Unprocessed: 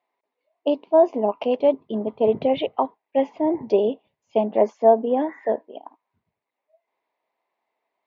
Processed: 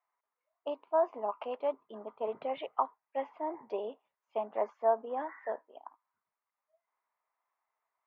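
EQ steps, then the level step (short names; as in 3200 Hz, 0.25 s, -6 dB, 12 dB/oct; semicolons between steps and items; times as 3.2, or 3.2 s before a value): band-pass 1300 Hz, Q 3.6; +2.0 dB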